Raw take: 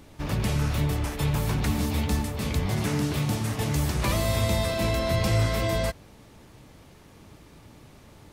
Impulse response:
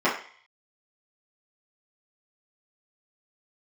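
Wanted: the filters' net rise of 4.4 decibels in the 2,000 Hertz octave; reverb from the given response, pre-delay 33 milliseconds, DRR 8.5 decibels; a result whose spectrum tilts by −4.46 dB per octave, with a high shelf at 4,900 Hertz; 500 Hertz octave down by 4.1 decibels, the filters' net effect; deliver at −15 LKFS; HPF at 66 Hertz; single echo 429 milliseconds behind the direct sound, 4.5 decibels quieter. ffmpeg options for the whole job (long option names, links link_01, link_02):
-filter_complex "[0:a]highpass=66,equalizer=frequency=500:width_type=o:gain=-6.5,equalizer=frequency=2000:width_type=o:gain=4.5,highshelf=frequency=4900:gain=5.5,aecho=1:1:429:0.596,asplit=2[link_01][link_02];[1:a]atrim=start_sample=2205,adelay=33[link_03];[link_02][link_03]afir=irnorm=-1:irlink=0,volume=-25.5dB[link_04];[link_01][link_04]amix=inputs=2:normalize=0,volume=10dB"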